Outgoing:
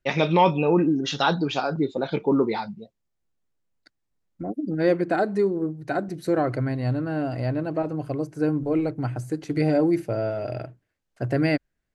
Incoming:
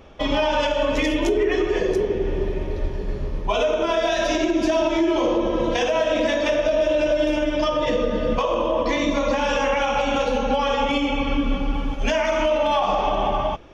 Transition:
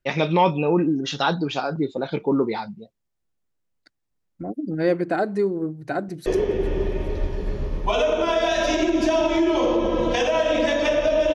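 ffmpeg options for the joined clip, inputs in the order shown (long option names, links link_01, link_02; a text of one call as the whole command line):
ffmpeg -i cue0.wav -i cue1.wav -filter_complex "[0:a]apad=whole_dur=11.34,atrim=end=11.34,atrim=end=6.262[link_01];[1:a]atrim=start=1.868:end=6.95[link_02];[link_01][link_02]acrossfade=duration=0.004:curve1=hsin:curve2=hsin,asplit=2[link_03][link_04];[link_04]afade=type=in:start_time=6:duration=0.01,afade=type=out:start_time=6.26:duration=0.01,aecho=0:1:410|820|1230|1640|2050|2460|2870:0.158489|0.103018|0.0669617|0.0435251|0.0282913|0.0183894|0.0119531[link_05];[link_03][link_05]amix=inputs=2:normalize=0" out.wav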